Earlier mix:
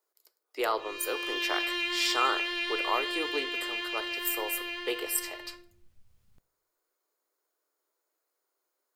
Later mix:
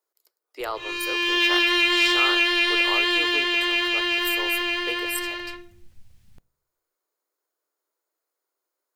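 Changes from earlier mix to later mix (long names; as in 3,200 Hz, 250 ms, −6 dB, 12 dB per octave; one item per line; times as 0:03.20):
speech: send −6.5 dB
background +11.5 dB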